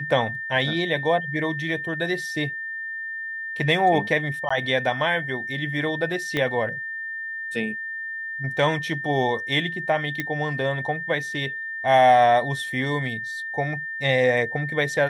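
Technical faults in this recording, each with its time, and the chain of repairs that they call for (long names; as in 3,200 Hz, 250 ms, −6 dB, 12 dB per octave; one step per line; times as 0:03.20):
whistle 1,800 Hz −29 dBFS
0:04.49–0:04.50: drop-out 15 ms
0:06.37: click −12 dBFS
0:10.20: click −12 dBFS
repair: click removal
notch filter 1,800 Hz, Q 30
repair the gap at 0:04.49, 15 ms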